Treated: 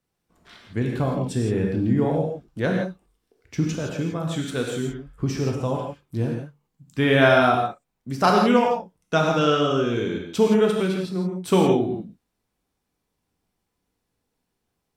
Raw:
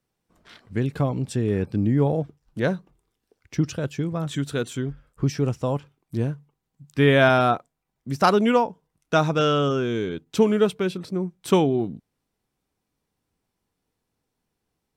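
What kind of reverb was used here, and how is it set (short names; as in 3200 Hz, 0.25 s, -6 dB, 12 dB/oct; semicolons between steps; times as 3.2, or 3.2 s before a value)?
non-linear reverb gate 0.19 s flat, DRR 0 dB; gain -1.5 dB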